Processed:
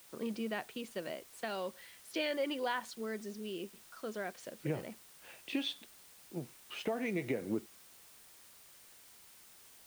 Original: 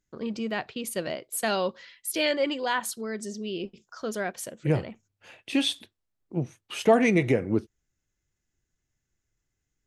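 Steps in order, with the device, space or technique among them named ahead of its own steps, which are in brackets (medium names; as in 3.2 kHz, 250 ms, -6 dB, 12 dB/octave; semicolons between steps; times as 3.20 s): medium wave at night (band-pass 170–4300 Hz; compression, threshold -26 dBFS, peak gain reduction 11.5 dB; tremolo 0.39 Hz, depth 39%; whistle 9 kHz -63 dBFS; white noise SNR 18 dB); trim -4.5 dB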